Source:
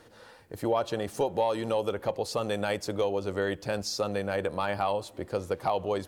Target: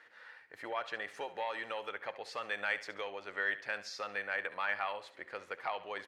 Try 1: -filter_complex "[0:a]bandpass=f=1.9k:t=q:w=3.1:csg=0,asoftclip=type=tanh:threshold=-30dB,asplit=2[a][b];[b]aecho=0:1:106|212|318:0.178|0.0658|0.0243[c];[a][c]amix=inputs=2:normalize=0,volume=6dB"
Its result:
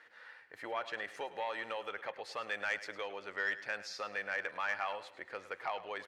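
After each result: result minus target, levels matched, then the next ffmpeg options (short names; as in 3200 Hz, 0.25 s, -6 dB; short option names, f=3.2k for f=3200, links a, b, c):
soft clip: distortion +18 dB; echo 37 ms late
-filter_complex "[0:a]bandpass=f=1.9k:t=q:w=3.1:csg=0,asoftclip=type=tanh:threshold=-19.5dB,asplit=2[a][b];[b]aecho=0:1:106|212|318:0.178|0.0658|0.0243[c];[a][c]amix=inputs=2:normalize=0,volume=6dB"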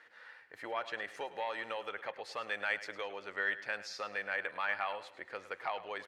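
echo 37 ms late
-filter_complex "[0:a]bandpass=f=1.9k:t=q:w=3.1:csg=0,asoftclip=type=tanh:threshold=-19.5dB,asplit=2[a][b];[b]aecho=0:1:69|138|207:0.178|0.0658|0.0243[c];[a][c]amix=inputs=2:normalize=0,volume=6dB"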